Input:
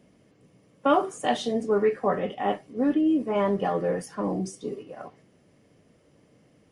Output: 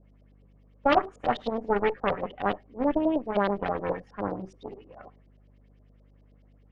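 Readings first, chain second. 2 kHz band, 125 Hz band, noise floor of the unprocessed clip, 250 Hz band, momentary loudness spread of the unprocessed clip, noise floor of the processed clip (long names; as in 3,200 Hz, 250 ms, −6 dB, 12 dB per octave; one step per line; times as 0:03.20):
+2.5 dB, −3.5 dB, −61 dBFS, −4.5 dB, 13 LU, −58 dBFS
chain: harmonic generator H 3 −18 dB, 6 −14 dB, 7 −30 dB, 8 −23 dB, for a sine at −10 dBFS
mains hum 50 Hz, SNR 26 dB
auto-filter low-pass saw up 9.5 Hz 500–4,700 Hz
level −2 dB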